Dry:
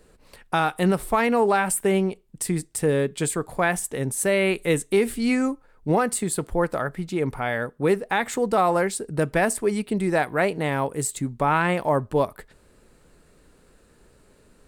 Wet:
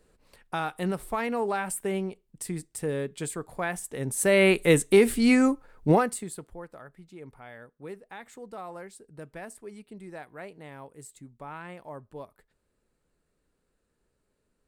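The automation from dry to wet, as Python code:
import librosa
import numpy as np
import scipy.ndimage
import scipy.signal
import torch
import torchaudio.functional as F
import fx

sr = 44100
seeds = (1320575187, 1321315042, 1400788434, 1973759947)

y = fx.gain(x, sr, db=fx.line((3.84, -8.5), (4.42, 2.0), (5.91, 2.0), (6.15, -8.5), (6.63, -20.0)))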